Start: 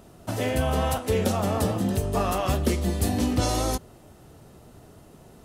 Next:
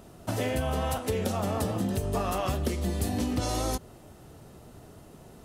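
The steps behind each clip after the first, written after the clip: compressor, threshold -25 dBFS, peak gain reduction 8 dB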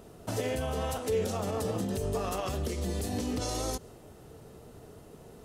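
dynamic EQ 6300 Hz, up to +5 dB, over -51 dBFS, Q 0.9; limiter -22.5 dBFS, peak gain reduction 7.5 dB; bell 450 Hz +8.5 dB 0.28 oct; gain -2 dB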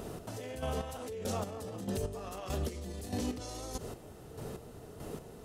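limiter -30.5 dBFS, peak gain reduction 10.5 dB; compressor 2.5:1, threshold -41 dBFS, peak gain reduction 5 dB; chopper 1.6 Hz, depth 60%, duty 30%; gain +8.5 dB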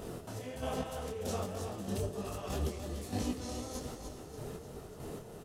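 feedback echo 0.294 s, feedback 53%, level -8 dB; detuned doubles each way 43 cents; gain +3 dB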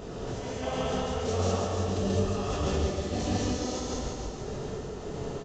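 echo 0.141 s -6 dB; non-linear reverb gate 0.23 s rising, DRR -3.5 dB; downsampling 16000 Hz; gain +3 dB

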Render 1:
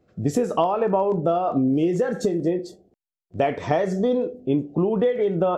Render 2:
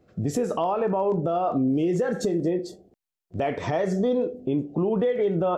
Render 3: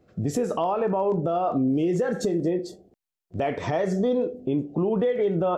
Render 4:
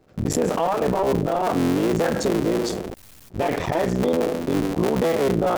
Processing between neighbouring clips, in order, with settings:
in parallel at -2 dB: compressor, threshold -30 dBFS, peak gain reduction 13.5 dB; on the sum: limiter -13.5 dBFS, peak gain reduction 9 dB; gain -2.5 dB
nothing audible
cycle switcher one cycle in 3, muted; sustainer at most 34 dB/s; gain +3.5 dB

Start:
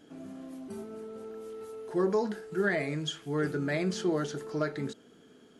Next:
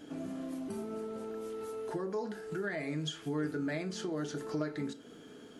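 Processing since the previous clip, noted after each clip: compressor 4:1, threshold -41 dBFS, peak gain reduction 15 dB; on a send at -10 dB: reverb RT60 0.35 s, pre-delay 3 ms; on the sum: gain +5 dB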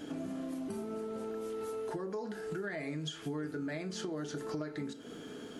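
compressor 3:1, threshold -44 dBFS, peak gain reduction 11 dB; gain +6 dB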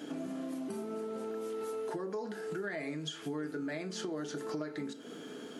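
HPF 180 Hz 12 dB/oct; gain +1 dB

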